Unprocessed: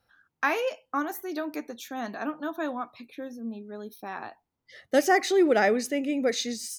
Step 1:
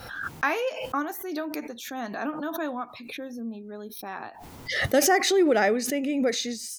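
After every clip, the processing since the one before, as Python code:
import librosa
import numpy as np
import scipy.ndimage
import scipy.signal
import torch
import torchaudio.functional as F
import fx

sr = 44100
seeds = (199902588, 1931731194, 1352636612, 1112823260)

y = fx.pre_swell(x, sr, db_per_s=48.0)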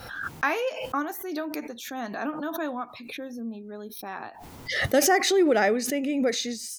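y = x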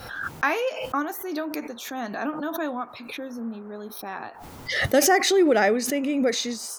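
y = fx.dmg_noise_band(x, sr, seeds[0], low_hz=360.0, high_hz=1400.0, level_db=-55.0)
y = y * librosa.db_to_amplitude(2.0)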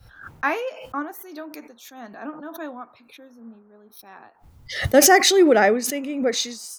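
y = fx.band_widen(x, sr, depth_pct=100)
y = y * librosa.db_to_amplitude(-2.0)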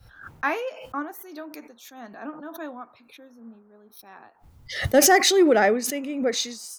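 y = 10.0 ** (-2.5 / 20.0) * np.tanh(x / 10.0 ** (-2.5 / 20.0))
y = y * librosa.db_to_amplitude(-2.0)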